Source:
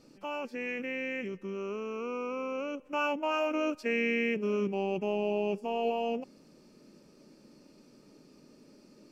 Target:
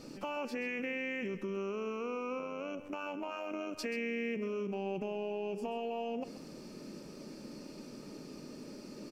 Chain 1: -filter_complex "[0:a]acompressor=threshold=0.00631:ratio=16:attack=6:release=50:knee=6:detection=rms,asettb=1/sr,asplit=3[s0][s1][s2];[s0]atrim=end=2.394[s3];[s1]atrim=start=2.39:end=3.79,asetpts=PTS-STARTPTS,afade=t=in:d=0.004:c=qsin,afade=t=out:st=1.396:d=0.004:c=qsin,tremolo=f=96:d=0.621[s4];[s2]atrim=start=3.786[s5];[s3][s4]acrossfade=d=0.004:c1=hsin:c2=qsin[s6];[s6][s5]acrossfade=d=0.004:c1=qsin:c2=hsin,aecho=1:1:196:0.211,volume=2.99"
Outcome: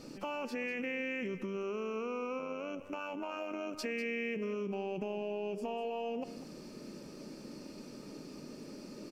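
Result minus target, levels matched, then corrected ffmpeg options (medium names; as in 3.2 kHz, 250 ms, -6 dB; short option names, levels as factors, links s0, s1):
echo 63 ms late
-filter_complex "[0:a]acompressor=threshold=0.00631:ratio=16:attack=6:release=50:knee=6:detection=rms,asettb=1/sr,asplit=3[s0][s1][s2];[s0]atrim=end=2.394[s3];[s1]atrim=start=2.39:end=3.79,asetpts=PTS-STARTPTS,afade=t=in:d=0.004:c=qsin,afade=t=out:st=1.396:d=0.004:c=qsin,tremolo=f=96:d=0.621[s4];[s2]atrim=start=3.786[s5];[s3][s4]acrossfade=d=0.004:c1=hsin:c2=qsin[s6];[s6][s5]acrossfade=d=0.004:c1=qsin:c2=hsin,aecho=1:1:133:0.211,volume=2.99"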